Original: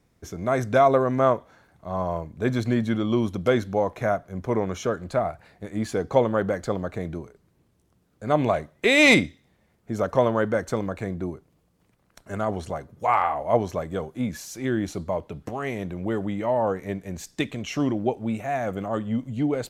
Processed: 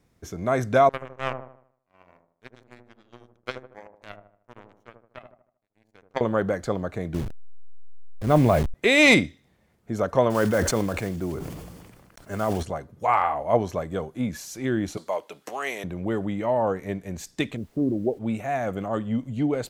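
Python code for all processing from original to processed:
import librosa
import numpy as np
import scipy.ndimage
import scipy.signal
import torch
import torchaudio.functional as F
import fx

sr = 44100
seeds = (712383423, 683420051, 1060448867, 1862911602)

y = fx.chain(x, sr, fx.low_shelf(hz=450.0, db=-9.0),
    fx.power_curve(exponent=3.0),
    fx.echo_wet_lowpass(ms=77, feedback_pct=41, hz=800.0, wet_db=-4.0), at=(0.89, 6.21))
y = fx.chain(y, sr, fx.delta_hold(step_db=-35.0),
    fx.low_shelf(hz=230.0, db=10.5),
    fx.sustainer(db_per_s=47.0), at=(7.14, 8.74))
y = fx.chain(y, sr, fx.block_float(bits=5),
    fx.notch(hz=3900.0, q=17.0),
    fx.sustainer(db_per_s=34.0), at=(10.3, 12.63))
y = fx.chain(y, sr, fx.highpass(hz=460.0, slope=12),
    fx.high_shelf(hz=2300.0, db=9.5), at=(14.97, 15.84))
y = fx.envelope_sharpen(y, sr, power=1.5, at=(17.56, 18.18), fade=0.02)
y = fx.cheby2_lowpass(y, sr, hz=3800.0, order=4, stop_db=80, at=(17.56, 18.18), fade=0.02)
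y = fx.dmg_noise_colour(y, sr, seeds[0], colour='pink', level_db=-63.0, at=(17.56, 18.18), fade=0.02)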